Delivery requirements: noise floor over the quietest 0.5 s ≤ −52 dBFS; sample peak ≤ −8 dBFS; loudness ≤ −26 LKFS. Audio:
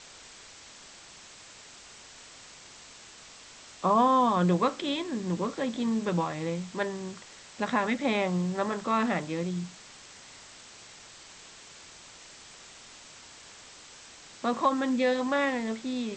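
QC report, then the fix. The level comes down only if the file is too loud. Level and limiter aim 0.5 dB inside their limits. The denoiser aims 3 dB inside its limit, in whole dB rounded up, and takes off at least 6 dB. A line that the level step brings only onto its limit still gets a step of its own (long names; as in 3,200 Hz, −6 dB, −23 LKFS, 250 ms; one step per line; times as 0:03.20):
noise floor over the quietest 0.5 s −50 dBFS: out of spec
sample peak −12.5 dBFS: in spec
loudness −28.5 LKFS: in spec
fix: broadband denoise 6 dB, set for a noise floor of −50 dBFS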